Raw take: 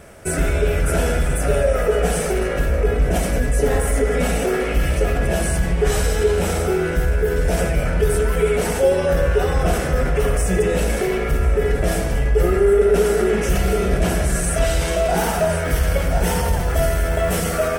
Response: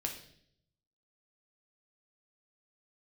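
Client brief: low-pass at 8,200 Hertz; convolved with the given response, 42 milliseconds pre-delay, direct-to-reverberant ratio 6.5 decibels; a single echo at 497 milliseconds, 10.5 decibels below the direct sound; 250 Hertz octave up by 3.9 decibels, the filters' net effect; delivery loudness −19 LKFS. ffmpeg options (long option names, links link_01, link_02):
-filter_complex "[0:a]lowpass=8200,equalizer=frequency=250:width_type=o:gain=6,aecho=1:1:497:0.299,asplit=2[link_01][link_02];[1:a]atrim=start_sample=2205,adelay=42[link_03];[link_02][link_03]afir=irnorm=-1:irlink=0,volume=-7.5dB[link_04];[link_01][link_04]amix=inputs=2:normalize=0,volume=-2dB"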